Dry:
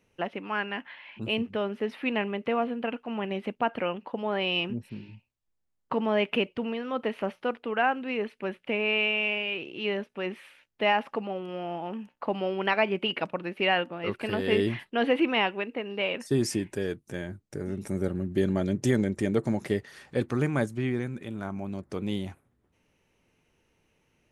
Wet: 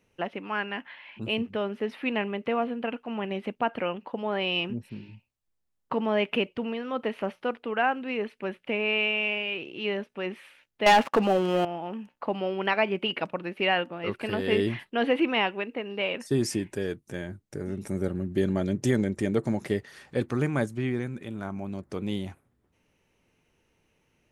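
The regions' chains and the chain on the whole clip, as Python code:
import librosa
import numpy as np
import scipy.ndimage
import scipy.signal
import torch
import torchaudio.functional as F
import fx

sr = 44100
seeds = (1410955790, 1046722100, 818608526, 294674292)

y = fx.chain(x, sr, fx.highpass(hz=120.0, slope=12),
    fx.leveller(passes=3), at=(10.86, 11.65))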